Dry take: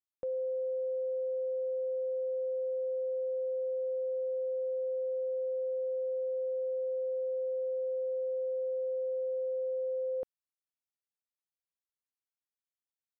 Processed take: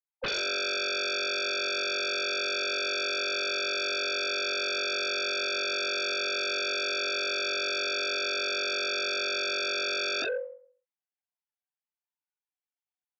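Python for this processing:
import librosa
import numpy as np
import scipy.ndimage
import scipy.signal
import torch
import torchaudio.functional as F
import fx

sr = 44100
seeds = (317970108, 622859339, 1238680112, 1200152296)

y = fx.sine_speech(x, sr)
y = scipy.signal.sosfilt(scipy.signal.butter(4, 300.0, 'highpass', fs=sr, output='sos'), y)
y = fx.rev_fdn(y, sr, rt60_s=0.54, lf_ratio=1.0, hf_ratio=0.7, size_ms=20.0, drr_db=-4.5)
y = fx.fold_sine(y, sr, drive_db=10, ceiling_db=-27.5)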